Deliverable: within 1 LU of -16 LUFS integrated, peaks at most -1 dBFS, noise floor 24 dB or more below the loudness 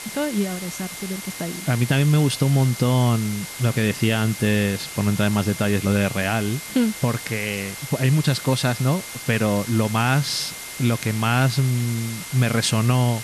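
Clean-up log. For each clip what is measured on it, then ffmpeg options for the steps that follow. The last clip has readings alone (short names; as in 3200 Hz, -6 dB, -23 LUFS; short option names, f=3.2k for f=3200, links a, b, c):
steady tone 2100 Hz; tone level -40 dBFS; noise floor -35 dBFS; noise floor target -46 dBFS; loudness -21.5 LUFS; peak -7.5 dBFS; loudness target -16.0 LUFS
-> -af "bandreject=f=2.1k:w=30"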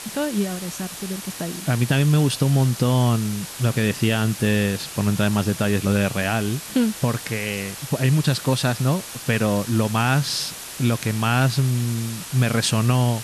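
steady tone none; noise floor -36 dBFS; noise floor target -46 dBFS
-> -af "afftdn=nr=10:nf=-36"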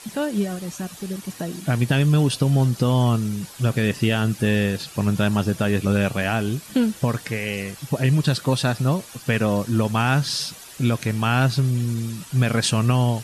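noise floor -42 dBFS; noise floor target -46 dBFS
-> -af "afftdn=nr=6:nf=-42"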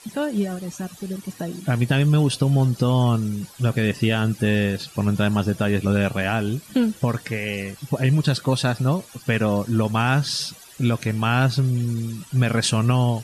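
noise floor -46 dBFS; loudness -22.0 LUFS; peak -8.0 dBFS; loudness target -16.0 LUFS
-> -af "volume=6dB"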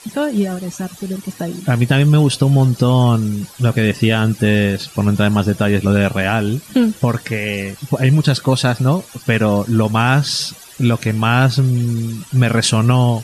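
loudness -16.0 LUFS; peak -2.0 dBFS; noise floor -40 dBFS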